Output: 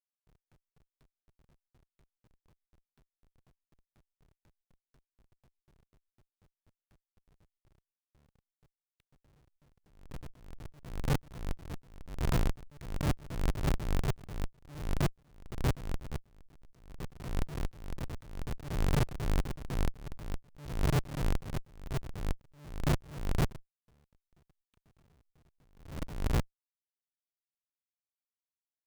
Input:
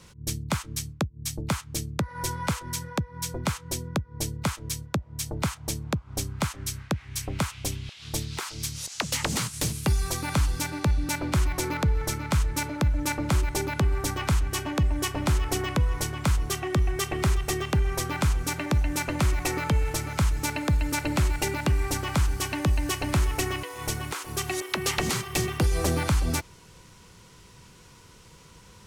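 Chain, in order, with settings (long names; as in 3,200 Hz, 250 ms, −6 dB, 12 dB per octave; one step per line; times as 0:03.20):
sub-octave generator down 1 octave, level +4 dB
in parallel at −1.5 dB: downward compressor 10 to 1, threshold −25 dBFS, peak gain reduction 13 dB
on the sum: parametric band 140 Hz +11.5 dB 0.44 octaves
comparator with hysteresis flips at −14 dBFS
level that may rise only so fast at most 100 dB per second
level −7.5 dB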